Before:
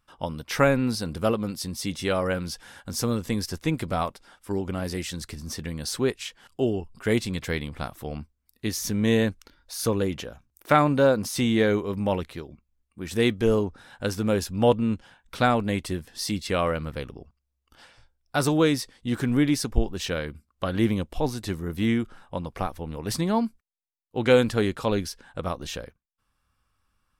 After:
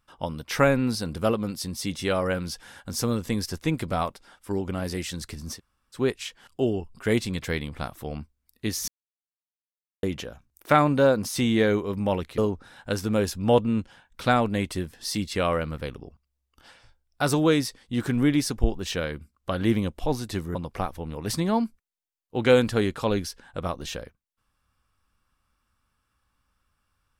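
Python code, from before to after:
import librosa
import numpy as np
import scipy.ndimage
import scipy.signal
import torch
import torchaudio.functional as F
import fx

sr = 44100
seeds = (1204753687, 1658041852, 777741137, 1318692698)

y = fx.edit(x, sr, fx.room_tone_fill(start_s=5.56, length_s=0.41, crossfade_s=0.1),
    fx.silence(start_s=8.88, length_s=1.15),
    fx.cut(start_s=12.38, length_s=1.14),
    fx.cut(start_s=21.69, length_s=0.67), tone=tone)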